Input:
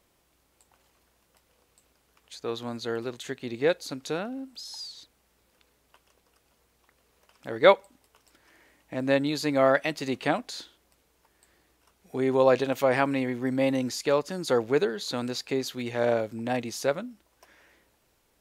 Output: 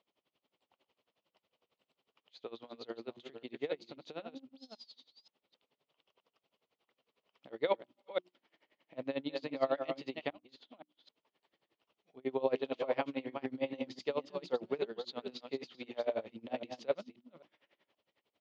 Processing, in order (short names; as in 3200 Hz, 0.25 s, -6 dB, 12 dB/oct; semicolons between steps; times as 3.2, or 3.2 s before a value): reverse delay 0.264 s, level -7 dB; speaker cabinet 180–4400 Hz, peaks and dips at 600 Hz +3 dB, 1600 Hz -8 dB, 3100 Hz +6 dB; 10.3–12.25 compressor 20:1, threshold -39 dBFS, peak gain reduction 19.5 dB; notches 60/120/180/240/300/360 Hz; dB-linear tremolo 11 Hz, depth 23 dB; gain -7 dB